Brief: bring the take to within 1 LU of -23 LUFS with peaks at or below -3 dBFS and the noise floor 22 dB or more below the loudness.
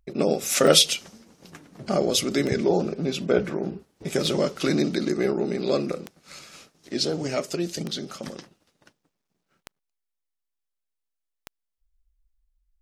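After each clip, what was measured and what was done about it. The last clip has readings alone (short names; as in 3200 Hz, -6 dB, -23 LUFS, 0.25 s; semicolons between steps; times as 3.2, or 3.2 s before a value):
clicks 7; loudness -24.0 LUFS; peak -3.0 dBFS; loudness target -23.0 LUFS
-> de-click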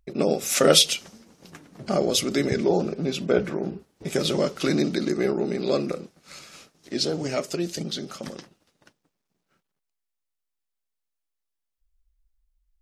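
clicks 0; loudness -24.0 LUFS; peak -3.0 dBFS; loudness target -23.0 LUFS
-> gain +1 dB; limiter -3 dBFS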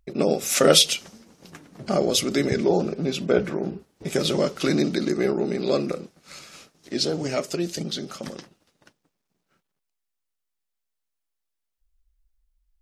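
loudness -23.0 LUFS; peak -3.0 dBFS; noise floor -81 dBFS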